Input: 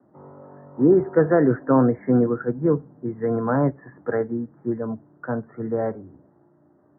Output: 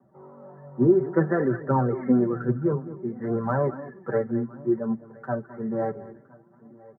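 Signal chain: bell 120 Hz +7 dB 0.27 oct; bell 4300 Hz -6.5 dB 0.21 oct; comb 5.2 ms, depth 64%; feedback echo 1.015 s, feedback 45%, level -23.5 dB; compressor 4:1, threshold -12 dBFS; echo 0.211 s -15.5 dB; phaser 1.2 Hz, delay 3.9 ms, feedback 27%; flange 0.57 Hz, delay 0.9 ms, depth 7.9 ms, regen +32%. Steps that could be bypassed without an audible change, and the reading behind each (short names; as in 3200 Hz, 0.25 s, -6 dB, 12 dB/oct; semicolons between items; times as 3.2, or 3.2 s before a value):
bell 4300 Hz: input band ends at 1700 Hz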